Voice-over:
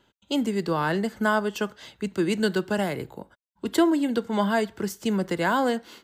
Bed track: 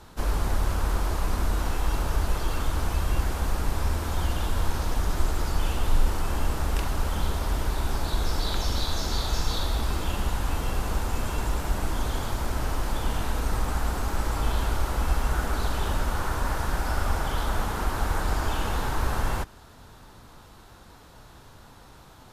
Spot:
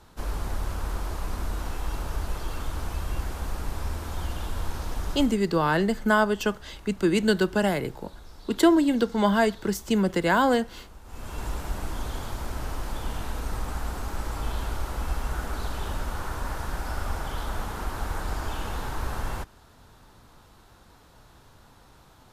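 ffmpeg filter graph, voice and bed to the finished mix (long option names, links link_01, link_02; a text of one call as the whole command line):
ffmpeg -i stem1.wav -i stem2.wav -filter_complex "[0:a]adelay=4850,volume=2dB[link_01];[1:a]volume=11dB,afade=type=out:start_time=5.11:duration=0.29:silence=0.16788,afade=type=in:start_time=11.04:duration=0.42:silence=0.158489[link_02];[link_01][link_02]amix=inputs=2:normalize=0" out.wav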